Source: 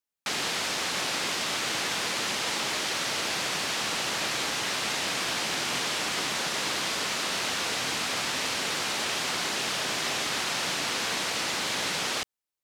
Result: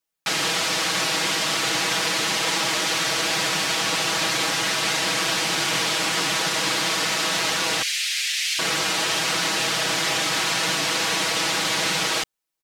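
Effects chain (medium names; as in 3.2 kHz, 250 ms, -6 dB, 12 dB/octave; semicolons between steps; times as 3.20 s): 7.82–8.59 s: steep high-pass 1.9 kHz 36 dB/octave; comb 6.2 ms, depth 89%; trim +4 dB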